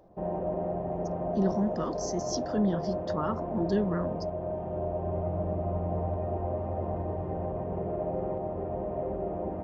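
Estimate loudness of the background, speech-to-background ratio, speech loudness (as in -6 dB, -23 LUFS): -33.5 LUFS, 1.5 dB, -32.0 LUFS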